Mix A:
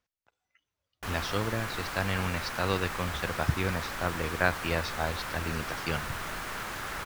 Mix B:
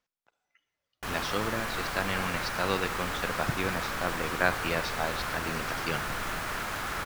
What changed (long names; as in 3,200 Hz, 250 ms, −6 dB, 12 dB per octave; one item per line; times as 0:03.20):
speech: add parametric band 73 Hz −12.5 dB 1.2 octaves
reverb: on, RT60 1.4 s